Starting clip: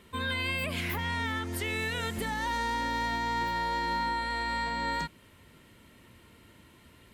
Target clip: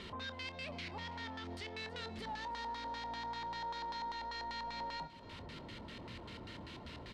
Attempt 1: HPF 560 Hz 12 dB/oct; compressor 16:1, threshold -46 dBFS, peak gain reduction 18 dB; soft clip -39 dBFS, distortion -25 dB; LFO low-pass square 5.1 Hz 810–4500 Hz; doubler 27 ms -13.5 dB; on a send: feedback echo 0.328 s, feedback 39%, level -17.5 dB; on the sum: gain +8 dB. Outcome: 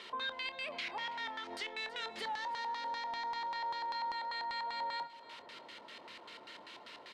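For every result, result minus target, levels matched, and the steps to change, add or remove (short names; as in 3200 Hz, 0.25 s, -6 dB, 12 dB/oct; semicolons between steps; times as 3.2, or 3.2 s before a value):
soft clip: distortion -14 dB; 500 Hz band -4.5 dB
change: soft clip -50 dBFS, distortion -11 dB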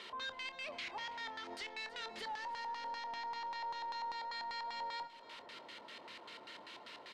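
500 Hz band -3.0 dB
remove: HPF 560 Hz 12 dB/oct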